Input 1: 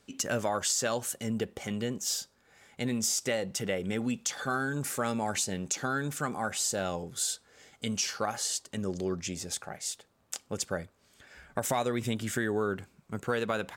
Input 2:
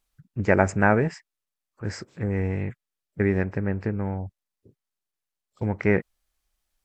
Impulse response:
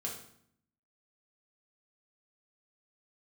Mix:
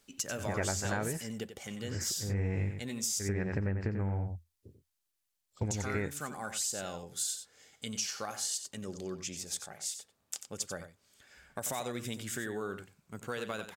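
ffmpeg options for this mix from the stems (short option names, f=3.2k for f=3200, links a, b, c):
-filter_complex "[0:a]volume=-8.5dB,asplit=3[a][b][c];[a]atrim=end=3.24,asetpts=PTS-STARTPTS,afade=t=out:st=3.236:d=0.004:c=hsin[d];[b]atrim=start=3.24:end=5.65,asetpts=PTS-STARTPTS,volume=0[e];[c]atrim=start=5.65,asetpts=PTS-STARTPTS,afade=t=in:d=0.004:c=hsin[f];[d][e][f]concat=n=3:v=0:a=1,asplit=3[g][h][i];[h]volume=-10dB[j];[1:a]equalizer=f=83:t=o:w=0.39:g=12,volume=-2dB,asplit=2[k][l];[l]volume=-8.5dB[m];[i]apad=whole_len=301982[n];[k][n]sidechaincompress=threshold=-55dB:ratio=6:attack=22:release=240[o];[j][m]amix=inputs=2:normalize=0,aecho=0:1:91:1[p];[g][o][p]amix=inputs=3:normalize=0,highshelf=f=2.8k:g=8,acompressor=threshold=-30dB:ratio=4"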